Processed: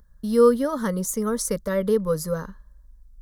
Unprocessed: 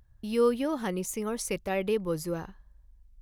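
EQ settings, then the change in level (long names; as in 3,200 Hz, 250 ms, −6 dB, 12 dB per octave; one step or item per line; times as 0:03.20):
phaser with its sweep stopped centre 510 Hz, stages 8
+8.5 dB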